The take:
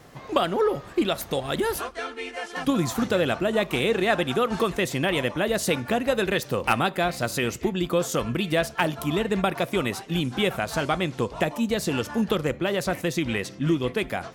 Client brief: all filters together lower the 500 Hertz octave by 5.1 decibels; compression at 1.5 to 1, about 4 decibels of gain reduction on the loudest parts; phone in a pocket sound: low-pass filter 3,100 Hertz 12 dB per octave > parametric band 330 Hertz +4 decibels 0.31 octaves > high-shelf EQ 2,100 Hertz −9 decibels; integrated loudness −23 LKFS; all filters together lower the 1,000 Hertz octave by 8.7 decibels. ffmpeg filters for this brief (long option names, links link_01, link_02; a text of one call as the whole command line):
ffmpeg -i in.wav -af "equalizer=frequency=500:width_type=o:gain=-5,equalizer=frequency=1000:width_type=o:gain=-8.5,acompressor=threshold=-32dB:ratio=1.5,lowpass=3100,equalizer=frequency=330:width_type=o:width=0.31:gain=4,highshelf=frequency=2100:gain=-9,volume=9.5dB" out.wav